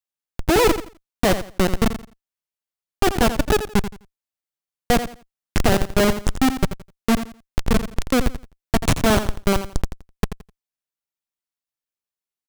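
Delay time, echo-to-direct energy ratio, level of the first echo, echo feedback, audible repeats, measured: 85 ms, −10.5 dB, −11.0 dB, 24%, 2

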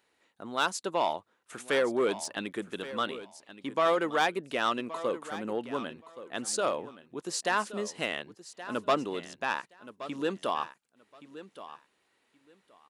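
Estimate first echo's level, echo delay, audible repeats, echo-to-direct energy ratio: −14.5 dB, 1,123 ms, 2, −14.5 dB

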